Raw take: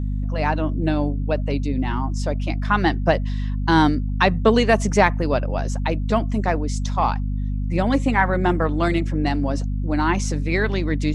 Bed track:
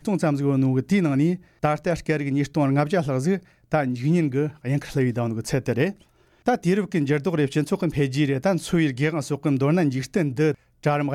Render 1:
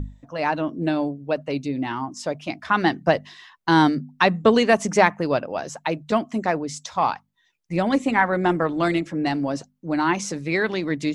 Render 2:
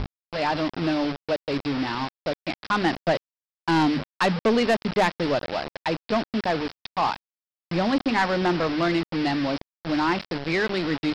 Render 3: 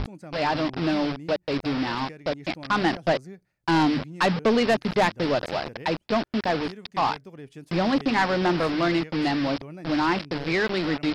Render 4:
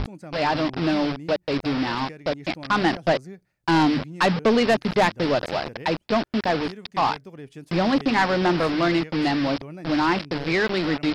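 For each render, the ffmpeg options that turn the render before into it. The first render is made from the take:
-af "bandreject=f=50:t=h:w=6,bandreject=f=100:t=h:w=6,bandreject=f=150:t=h:w=6,bandreject=f=200:t=h:w=6,bandreject=f=250:t=h:w=6"
-af "aresample=11025,acrusher=bits=4:mix=0:aa=0.000001,aresample=44100,asoftclip=type=tanh:threshold=-15dB"
-filter_complex "[1:a]volume=-20.5dB[a];[0:a][a]amix=inputs=2:normalize=0"
-af "volume=2dB"

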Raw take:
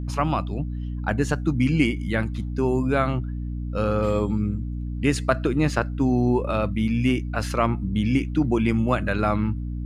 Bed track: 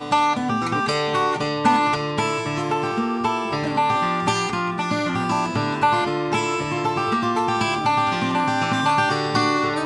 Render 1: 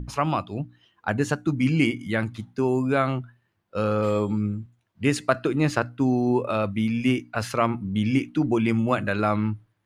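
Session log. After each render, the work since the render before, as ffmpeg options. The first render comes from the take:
-af "bandreject=f=60:t=h:w=6,bandreject=f=120:t=h:w=6,bandreject=f=180:t=h:w=6,bandreject=f=240:t=h:w=6,bandreject=f=300:t=h:w=6"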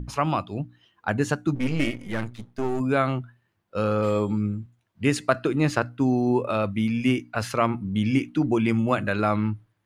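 -filter_complex "[0:a]asplit=3[a][b][c];[a]afade=t=out:st=1.54:d=0.02[d];[b]aeval=exprs='if(lt(val(0),0),0.251*val(0),val(0))':c=same,afade=t=in:st=1.54:d=0.02,afade=t=out:st=2.79:d=0.02[e];[c]afade=t=in:st=2.79:d=0.02[f];[d][e][f]amix=inputs=3:normalize=0"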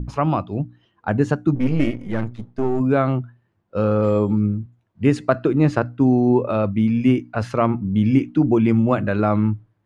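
-af "lowpass=8.3k,tiltshelf=f=1.4k:g=6.5"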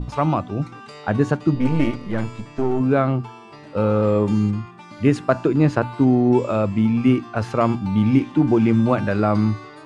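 -filter_complex "[1:a]volume=-18dB[a];[0:a][a]amix=inputs=2:normalize=0"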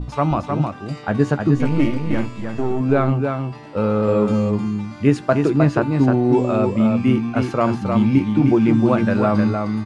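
-filter_complex "[0:a]asplit=2[a][b];[b]adelay=14,volume=-12dB[c];[a][c]amix=inputs=2:normalize=0,aecho=1:1:309:0.562"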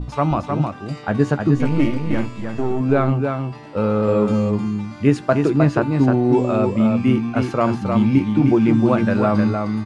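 -af anull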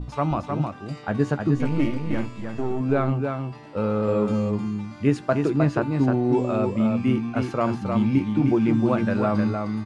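-af "volume=-5dB"

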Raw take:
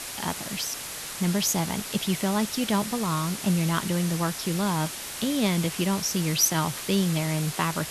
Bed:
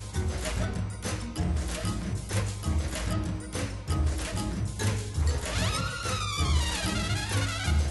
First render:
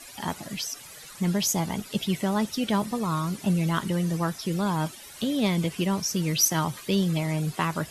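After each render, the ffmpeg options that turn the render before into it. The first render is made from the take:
-af "afftdn=nr=14:nf=-36"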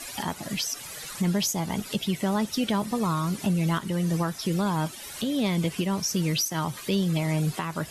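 -filter_complex "[0:a]asplit=2[a][b];[b]acompressor=threshold=-32dB:ratio=6,volume=1dB[c];[a][c]amix=inputs=2:normalize=0,alimiter=limit=-17dB:level=0:latency=1:release=479"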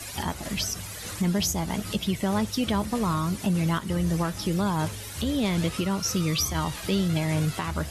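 -filter_complex "[1:a]volume=-8.5dB[a];[0:a][a]amix=inputs=2:normalize=0"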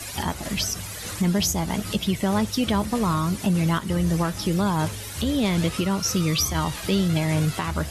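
-af "volume=3dB"

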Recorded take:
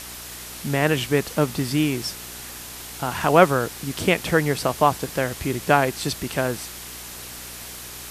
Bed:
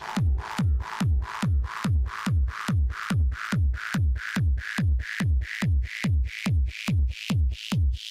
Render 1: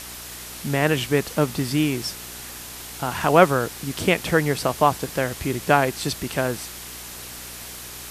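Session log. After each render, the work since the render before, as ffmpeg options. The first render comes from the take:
-af anull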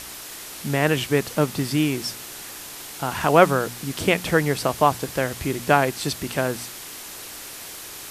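-af "bandreject=f=60:t=h:w=4,bandreject=f=120:t=h:w=4,bandreject=f=180:t=h:w=4,bandreject=f=240:t=h:w=4"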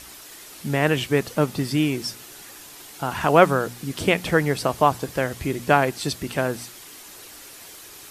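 -af "afftdn=nr=7:nf=-38"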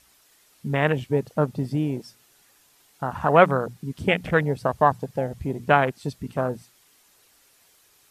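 -af "afwtdn=0.0631,equalizer=f=330:t=o:w=0.47:g=-6"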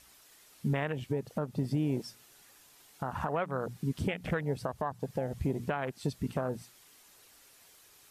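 -af "acompressor=threshold=-25dB:ratio=5,alimiter=limit=-21.5dB:level=0:latency=1:release=237"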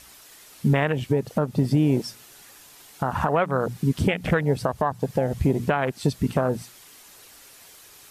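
-af "volume=10.5dB"

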